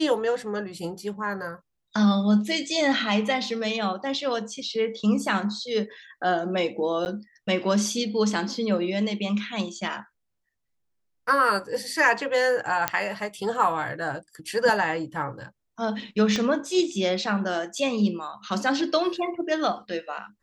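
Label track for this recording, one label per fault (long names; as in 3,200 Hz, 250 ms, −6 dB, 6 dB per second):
7.050000	7.060000	drop-out 9.8 ms
12.880000	12.880000	click −5 dBFS
16.360000	16.360000	click −14 dBFS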